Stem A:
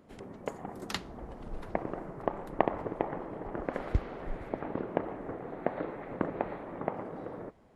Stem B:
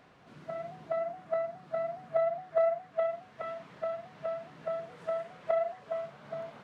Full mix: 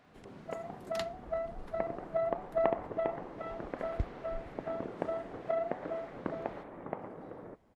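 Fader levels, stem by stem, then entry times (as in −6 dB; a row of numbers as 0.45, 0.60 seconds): −5.5, −4.0 decibels; 0.05, 0.00 seconds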